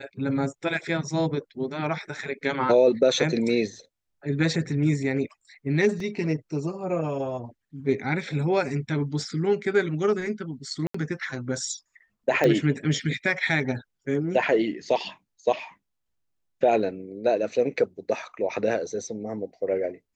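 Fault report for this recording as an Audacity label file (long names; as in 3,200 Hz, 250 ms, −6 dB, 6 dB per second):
6.000000	6.000000	drop-out 3 ms
10.870000	10.940000	drop-out 74 ms
12.440000	12.440000	click −11 dBFS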